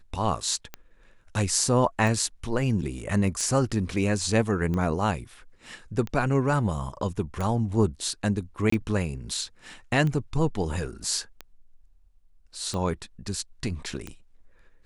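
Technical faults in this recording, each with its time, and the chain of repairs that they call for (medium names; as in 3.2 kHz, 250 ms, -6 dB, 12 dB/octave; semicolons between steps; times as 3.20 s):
tick 45 rpm -19 dBFS
8.70–8.72 s: dropout 24 ms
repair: de-click; interpolate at 8.70 s, 24 ms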